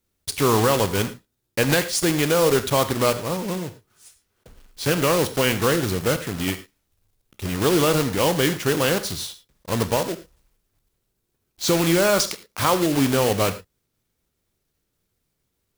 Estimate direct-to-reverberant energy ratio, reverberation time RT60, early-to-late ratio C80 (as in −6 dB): 11.0 dB, non-exponential decay, 16.5 dB